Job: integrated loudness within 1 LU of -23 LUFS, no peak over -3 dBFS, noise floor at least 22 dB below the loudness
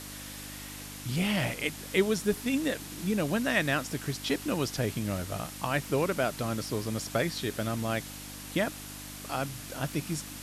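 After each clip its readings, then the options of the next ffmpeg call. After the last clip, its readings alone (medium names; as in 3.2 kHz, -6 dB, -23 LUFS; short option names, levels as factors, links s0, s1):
hum 50 Hz; highest harmonic 300 Hz; hum level -45 dBFS; noise floor -43 dBFS; noise floor target -54 dBFS; loudness -31.5 LUFS; peak level -12.0 dBFS; loudness target -23.0 LUFS
-> -af "bandreject=f=50:t=h:w=4,bandreject=f=100:t=h:w=4,bandreject=f=150:t=h:w=4,bandreject=f=200:t=h:w=4,bandreject=f=250:t=h:w=4,bandreject=f=300:t=h:w=4"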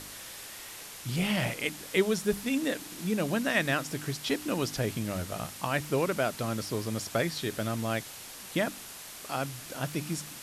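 hum not found; noise floor -45 dBFS; noise floor target -54 dBFS
-> -af "afftdn=nr=9:nf=-45"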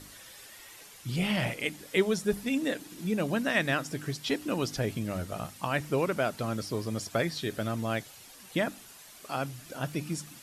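noise floor -51 dBFS; noise floor target -54 dBFS
-> -af "afftdn=nr=6:nf=-51"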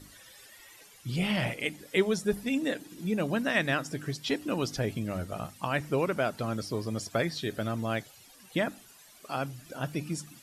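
noise floor -55 dBFS; loudness -31.5 LUFS; peak level -12.5 dBFS; loudness target -23.0 LUFS
-> -af "volume=2.66"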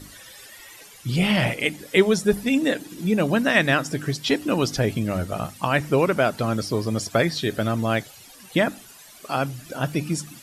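loudness -23.0 LUFS; peak level -4.0 dBFS; noise floor -47 dBFS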